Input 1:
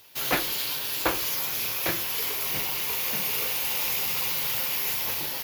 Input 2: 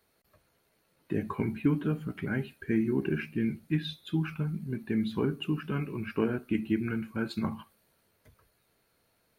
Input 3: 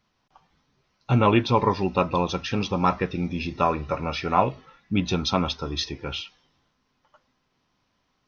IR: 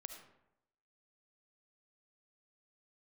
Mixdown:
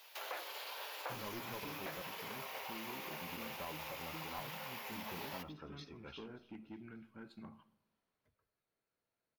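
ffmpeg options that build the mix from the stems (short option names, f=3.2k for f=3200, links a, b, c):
-filter_complex "[0:a]highpass=f=530:w=0.5412,highpass=f=530:w=1.3066,alimiter=limit=-22dB:level=0:latency=1,volume=-1.5dB,asplit=2[a][b];[b]volume=-10.5dB[c];[1:a]asoftclip=type=hard:threshold=-22.5dB,asoftclip=type=tanh:threshold=-22.5dB,volume=-19.5dB,asplit=3[d][e][f];[e]volume=-4dB[g];[2:a]aeval=exprs='clip(val(0),-1,0.1)':c=same,volume=-17.5dB,asplit=3[h][i][j];[h]atrim=end=2.02,asetpts=PTS-STARTPTS,afade=t=out:st=2.016:d=0.004:c=hsin[k];[i]atrim=start=2.02:end=3.21,asetpts=PTS-STARTPTS,volume=0[l];[j]atrim=start=3.21,asetpts=PTS-STARTPTS,afade=t=in:d=0.004:c=hsin[m];[k][l][m]concat=n=3:v=0:a=1,asplit=2[n][o];[o]volume=-20.5dB[p];[f]apad=whole_len=364965[q];[n][q]sidechaincompress=threshold=-52dB:ratio=8:attack=16:release=296[r];[3:a]atrim=start_sample=2205[s];[c][g]amix=inputs=2:normalize=0[t];[t][s]afir=irnorm=-1:irlink=0[u];[p]aecho=0:1:291|582|873|1164|1455|1746|2037:1|0.48|0.23|0.111|0.0531|0.0255|0.0122[v];[a][d][r][u][v]amix=inputs=5:normalize=0,lowshelf=f=140:g=-7,acrossover=split=990|3000[w][x][y];[w]acompressor=threshold=-44dB:ratio=4[z];[x]acompressor=threshold=-49dB:ratio=4[aa];[y]acompressor=threshold=-45dB:ratio=4[ab];[z][aa][ab]amix=inputs=3:normalize=0,highshelf=f=4.5k:g=-9.5"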